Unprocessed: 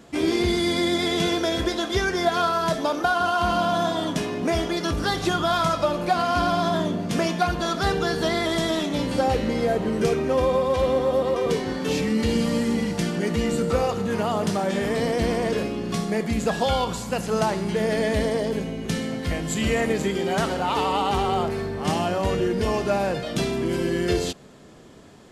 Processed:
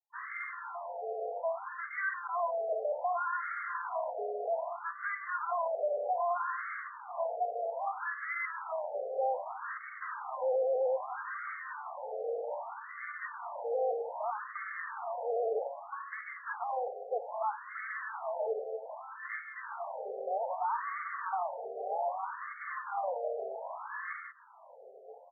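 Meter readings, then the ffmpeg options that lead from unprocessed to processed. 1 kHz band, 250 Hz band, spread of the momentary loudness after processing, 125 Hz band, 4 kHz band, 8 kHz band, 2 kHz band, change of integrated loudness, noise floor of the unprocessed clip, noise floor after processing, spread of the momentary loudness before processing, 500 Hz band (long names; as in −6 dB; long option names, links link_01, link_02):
−9.0 dB, below −40 dB, 9 LU, below −40 dB, below −40 dB, below −40 dB, −9.0 dB, −12.5 dB, −32 dBFS, −49 dBFS, 4 LU, −11.5 dB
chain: -filter_complex "[0:a]adynamicequalizer=threshold=0.00891:dfrequency=1300:dqfactor=4.1:tfrequency=1300:tqfactor=4.1:attack=5:release=100:ratio=0.375:range=3:mode=cutabove:tftype=bell,afftfilt=real='re*gte(hypot(re,im),0.00891)':imag='im*gte(hypot(re,im),0.00891)':win_size=1024:overlap=0.75,volume=25.5dB,asoftclip=hard,volume=-25.5dB,highshelf=frequency=4300:gain=10,asplit=2[link_01][link_02];[link_02]adelay=991.3,volume=-13dB,highshelf=frequency=4000:gain=-22.3[link_03];[link_01][link_03]amix=inputs=2:normalize=0,afftfilt=real='re*between(b*sr/1024,550*pow(1600/550,0.5+0.5*sin(2*PI*0.63*pts/sr))/1.41,550*pow(1600/550,0.5+0.5*sin(2*PI*0.63*pts/sr))*1.41)':imag='im*between(b*sr/1024,550*pow(1600/550,0.5+0.5*sin(2*PI*0.63*pts/sr))/1.41,550*pow(1600/550,0.5+0.5*sin(2*PI*0.63*pts/sr))*1.41)':win_size=1024:overlap=0.75,volume=-1.5dB"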